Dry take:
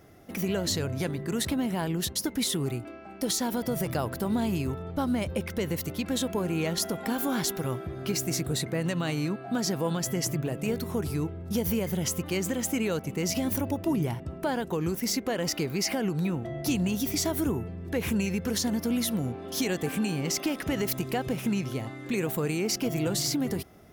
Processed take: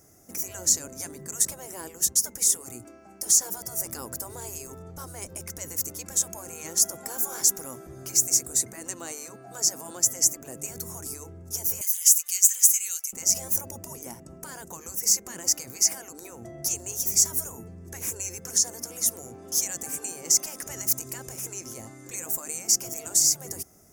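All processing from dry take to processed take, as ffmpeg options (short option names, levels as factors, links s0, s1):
-filter_complex "[0:a]asettb=1/sr,asplit=3[s0][s1][s2];[s0]atrim=end=11.814[s3];[s1]atrim=start=11.81:end=13.13,asetpts=PTS-STARTPTS,afade=t=in:d=0.004:c=qsin,afade=t=out:st=1.316:d=0.004:c=qsin,highpass=f=2600:t=q:w=1.6,aemphasis=mode=production:type=cd,asplit=2[s4][s5];[s5]adelay=12,volume=0.251[s6];[s4][s6]amix=inputs=2:normalize=0,atrim=end_sample=58212[s7];[s2]atrim=start=13.126[s8];[s3][s7]acrossfade=d=0.004:c1=hsin:c2=qsin[s9];[s9][s8]acrossfade=d=0.004:c1=qsin:c2=hsin,asettb=1/sr,asplit=3[s10][s11][s12];[s10]atrim=end=18.384[s13];[s11]atrim=start=18.38:end=19.06,asetpts=PTS-STARTPTS,afade=t=in:d=0.004:c=qsin,afade=t=out:st=0.676:d=0.004:c=qsin,acrossover=split=10000[s14][s15];[s15]acompressor=threshold=0.00398:ratio=4:attack=1:release=60[s16];[s14][s16]amix=inputs=2:normalize=0,highpass=110,bandreject=f=60:t=h:w=6,bandreject=f=120:t=h:w=6,bandreject=f=180:t=h:w=6,bandreject=f=240:t=h:w=6,bandreject=f=300:t=h:w=6,bandreject=f=360:t=h:w=6,bandreject=f=420:t=h:w=6,bandreject=f=480:t=h:w=6,bandreject=f=540:t=h:w=6[s17];[s12]atrim=start=19.056[s18];[s13][s17]acrossfade=d=0.004:c1=hsin:c2=qsin[s19];[s19][s18]acrossfade=d=0.004:c1=qsin:c2=hsin,bandreject=f=4100:w=17,afftfilt=real='re*lt(hypot(re,im),0.178)':imag='im*lt(hypot(re,im),0.178)':win_size=1024:overlap=0.75,highshelf=f=4800:t=q:w=3:g=12.5,volume=0.531"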